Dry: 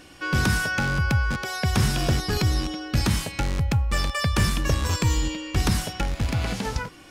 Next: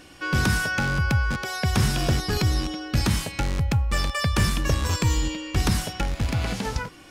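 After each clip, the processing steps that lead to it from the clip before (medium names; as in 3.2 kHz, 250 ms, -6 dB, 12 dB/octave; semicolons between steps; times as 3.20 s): no audible change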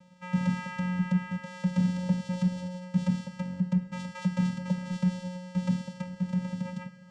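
vocoder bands 4, square 181 Hz; reverberation, pre-delay 3 ms, DRR 11 dB; trim -3 dB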